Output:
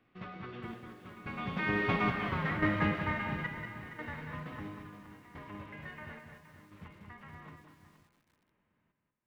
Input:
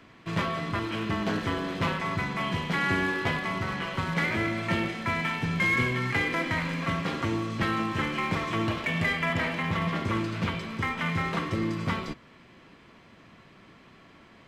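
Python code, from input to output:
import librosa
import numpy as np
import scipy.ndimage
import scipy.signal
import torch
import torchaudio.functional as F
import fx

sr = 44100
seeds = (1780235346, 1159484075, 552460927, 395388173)

p1 = fx.doppler_pass(x, sr, speed_mps=32, closest_m=7.5, pass_at_s=3.63)
p2 = scipy.signal.sosfilt(scipy.signal.butter(2, 2800.0, 'lowpass', fs=sr, output='sos'), p1)
p3 = fx.low_shelf(p2, sr, hz=120.0, db=4.5)
p4 = fx.hum_notches(p3, sr, base_hz=50, count=3)
p5 = fx.stretch_vocoder(p4, sr, factor=0.64)
p6 = fx.step_gate(p5, sr, bpm=143, pattern='xxxxxxx.....x', floor_db=-12.0, edge_ms=4.5)
p7 = p6 + fx.echo_single(p6, sr, ms=190, db=-7.0, dry=0)
p8 = fx.echo_crushed(p7, sr, ms=470, feedback_pct=35, bits=11, wet_db=-12)
y = F.gain(torch.from_numpy(p8), 8.5).numpy()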